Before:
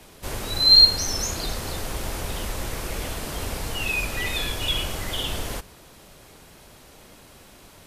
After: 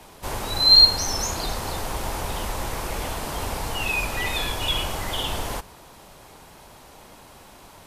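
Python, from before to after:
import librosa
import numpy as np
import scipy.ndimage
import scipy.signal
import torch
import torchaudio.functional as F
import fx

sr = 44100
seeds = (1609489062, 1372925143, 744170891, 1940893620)

y = fx.peak_eq(x, sr, hz=900.0, db=8.0, octaves=0.82)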